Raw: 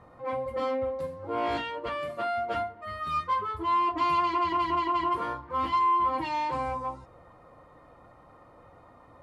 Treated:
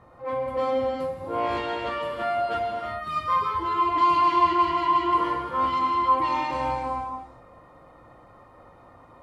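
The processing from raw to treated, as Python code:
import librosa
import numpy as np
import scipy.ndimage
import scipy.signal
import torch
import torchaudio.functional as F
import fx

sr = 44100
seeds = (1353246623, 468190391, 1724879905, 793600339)

y = fx.rev_gated(x, sr, seeds[0], gate_ms=380, shape='flat', drr_db=-0.5)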